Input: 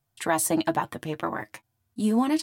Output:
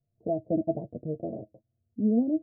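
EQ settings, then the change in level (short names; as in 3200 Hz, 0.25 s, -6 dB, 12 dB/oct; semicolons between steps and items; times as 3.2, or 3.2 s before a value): rippled Chebyshev low-pass 680 Hz, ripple 3 dB; 0.0 dB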